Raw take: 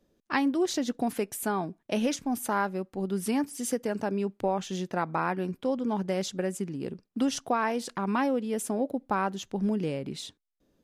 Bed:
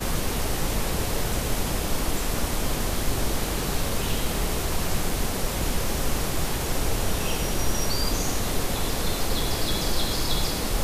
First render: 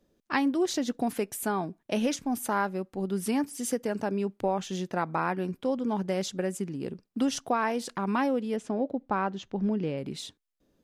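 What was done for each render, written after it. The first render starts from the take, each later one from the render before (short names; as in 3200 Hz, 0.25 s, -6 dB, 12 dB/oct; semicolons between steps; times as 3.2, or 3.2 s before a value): 8.56–9.98 air absorption 140 m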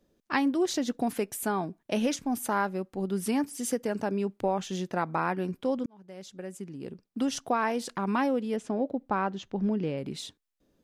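5.86–7.56 fade in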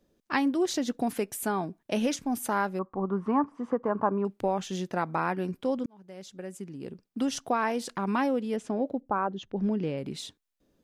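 2.79–4.25 synth low-pass 1100 Hz, resonance Q 8.7; 9–9.57 formant sharpening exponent 1.5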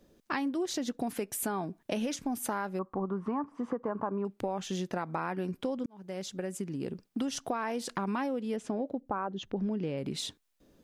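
in parallel at +1.5 dB: limiter -20 dBFS, peak gain reduction 7.5 dB; on the sum: compressor 4:1, threshold -32 dBFS, peak gain reduction 14 dB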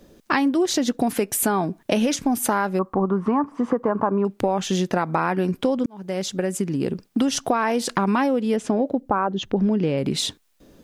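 gain +12 dB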